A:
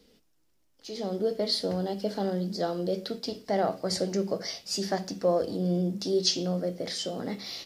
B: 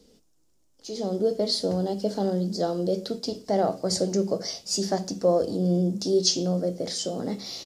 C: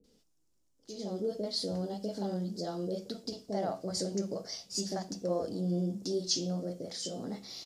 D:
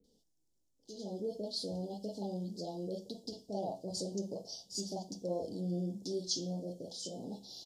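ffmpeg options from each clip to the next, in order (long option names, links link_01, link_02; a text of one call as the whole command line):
ffmpeg -i in.wav -af "firequalizer=gain_entry='entry(460,0);entry(1900,-9);entry(6900,4);entry(13000,-5)':delay=0.05:min_phase=1,volume=4dB" out.wav
ffmpeg -i in.wav -filter_complex "[0:a]acrossover=split=550[link_01][link_02];[link_02]adelay=40[link_03];[link_01][link_03]amix=inputs=2:normalize=0,volume=-8dB" out.wav
ffmpeg -i in.wav -af "asuperstop=centerf=1700:order=12:qfactor=0.8,volume=-4.5dB" out.wav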